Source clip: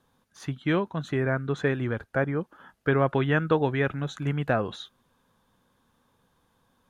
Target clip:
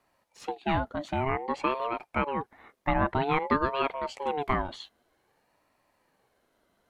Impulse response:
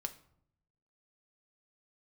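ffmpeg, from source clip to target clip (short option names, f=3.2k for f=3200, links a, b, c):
-af "aeval=exprs='val(0)*sin(2*PI*630*n/s+630*0.3/0.52*sin(2*PI*0.52*n/s))':c=same"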